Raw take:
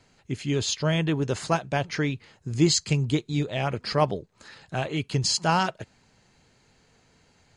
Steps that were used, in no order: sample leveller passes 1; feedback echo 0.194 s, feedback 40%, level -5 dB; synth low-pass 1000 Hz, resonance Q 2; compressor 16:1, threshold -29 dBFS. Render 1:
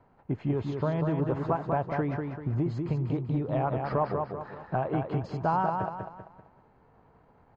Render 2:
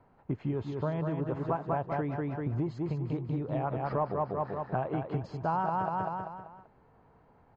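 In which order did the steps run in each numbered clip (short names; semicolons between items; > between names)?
compressor > feedback echo > sample leveller > synth low-pass; sample leveller > feedback echo > compressor > synth low-pass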